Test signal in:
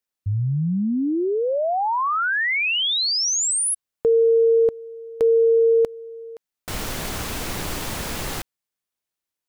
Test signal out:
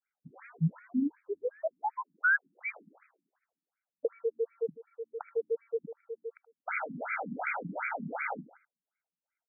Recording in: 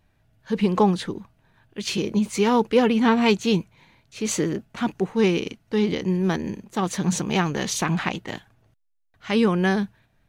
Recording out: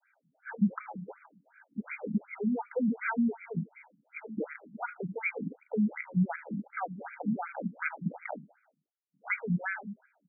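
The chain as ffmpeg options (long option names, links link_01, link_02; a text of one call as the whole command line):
ffmpeg -i in.wav -filter_complex "[0:a]aemphasis=mode=reproduction:type=50kf,bandreject=frequency=50:width_type=h:width=6,bandreject=frequency=100:width_type=h:width=6,bandreject=frequency=150:width_type=h:width=6,adynamicequalizer=threshold=0.0316:dfrequency=630:dqfactor=0.7:tfrequency=630:tqfactor=0.7:attack=5:release=100:ratio=0.417:range=2:mode=cutabove:tftype=bell,aecho=1:1:1.4:0.97,acrossover=split=180|2500[link_01][link_02][link_03];[link_01]acompressor=threshold=-30dB:ratio=3[link_04];[link_02]acompressor=threshold=-30dB:ratio=6[link_05];[link_03]acompressor=threshold=-34dB:ratio=6[link_06];[link_04][link_05][link_06]amix=inputs=3:normalize=0,lowpass=frequency=3200:width_type=q:width=10,acrusher=bits=5:mode=log:mix=0:aa=0.000001,asplit=2[link_07][link_08];[link_08]aecho=0:1:77|154|231:0.2|0.0559|0.0156[link_09];[link_07][link_09]amix=inputs=2:normalize=0,afftfilt=real='re*between(b*sr/1024,210*pow(1800/210,0.5+0.5*sin(2*PI*2.7*pts/sr))/1.41,210*pow(1800/210,0.5+0.5*sin(2*PI*2.7*pts/sr))*1.41)':imag='im*between(b*sr/1024,210*pow(1800/210,0.5+0.5*sin(2*PI*2.7*pts/sr))/1.41,210*pow(1800/210,0.5+0.5*sin(2*PI*2.7*pts/sr))*1.41)':win_size=1024:overlap=0.75,volume=2dB" out.wav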